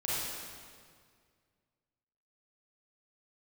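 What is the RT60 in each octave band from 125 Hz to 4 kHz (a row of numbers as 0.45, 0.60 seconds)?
2.5, 2.2, 2.0, 1.9, 1.8, 1.6 seconds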